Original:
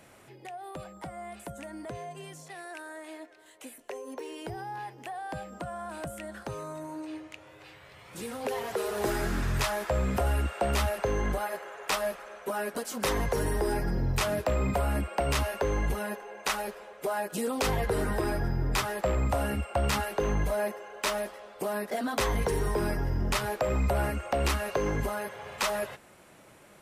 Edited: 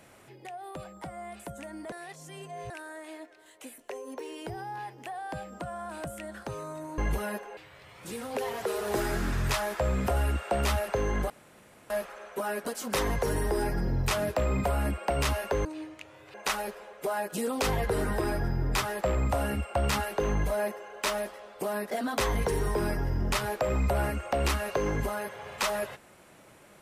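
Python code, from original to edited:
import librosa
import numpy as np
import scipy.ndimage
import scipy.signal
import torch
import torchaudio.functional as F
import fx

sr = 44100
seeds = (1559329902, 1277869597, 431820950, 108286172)

y = fx.edit(x, sr, fx.reverse_span(start_s=1.92, length_s=0.78),
    fx.swap(start_s=6.98, length_s=0.69, other_s=15.75, other_length_s=0.59),
    fx.room_tone_fill(start_s=11.4, length_s=0.6), tone=tone)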